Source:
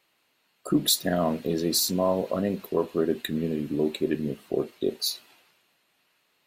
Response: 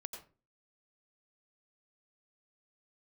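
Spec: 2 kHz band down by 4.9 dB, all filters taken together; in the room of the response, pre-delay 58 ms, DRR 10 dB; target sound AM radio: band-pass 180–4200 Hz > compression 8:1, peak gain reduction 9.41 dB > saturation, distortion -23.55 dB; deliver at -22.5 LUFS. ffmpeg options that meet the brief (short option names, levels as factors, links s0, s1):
-filter_complex "[0:a]equalizer=f=2000:t=o:g=-6,asplit=2[s0][s1];[1:a]atrim=start_sample=2205,adelay=58[s2];[s1][s2]afir=irnorm=-1:irlink=0,volume=0.447[s3];[s0][s3]amix=inputs=2:normalize=0,highpass=180,lowpass=4200,acompressor=threshold=0.0447:ratio=8,asoftclip=threshold=0.106,volume=3.55"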